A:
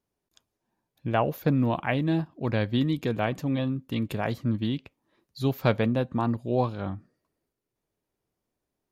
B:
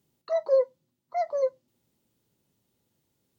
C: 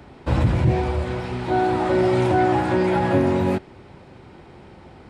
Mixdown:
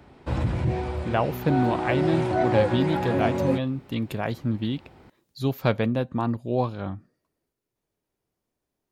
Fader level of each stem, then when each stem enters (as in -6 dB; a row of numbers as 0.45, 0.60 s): +0.5, -2.0, -6.5 dB; 0.00, 2.05, 0.00 s